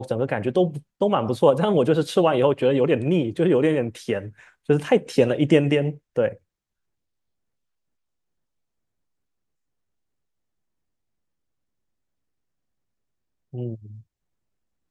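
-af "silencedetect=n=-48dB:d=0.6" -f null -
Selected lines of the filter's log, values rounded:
silence_start: 6.37
silence_end: 13.53 | silence_duration: 7.16
silence_start: 14.02
silence_end: 14.90 | silence_duration: 0.89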